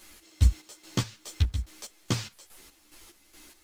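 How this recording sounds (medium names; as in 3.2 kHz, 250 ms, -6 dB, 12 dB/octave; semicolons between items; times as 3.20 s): a quantiser's noise floor 10-bit, dither none; chopped level 2.4 Hz, depth 65%, duty 45%; a shimmering, thickened sound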